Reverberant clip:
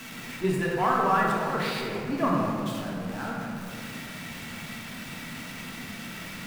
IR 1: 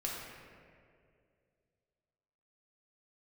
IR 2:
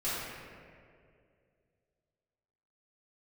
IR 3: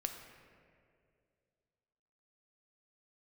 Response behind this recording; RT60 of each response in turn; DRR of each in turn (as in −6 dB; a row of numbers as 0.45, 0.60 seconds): 1; 2.3, 2.3, 2.3 seconds; −4.0, −13.0, 4.5 decibels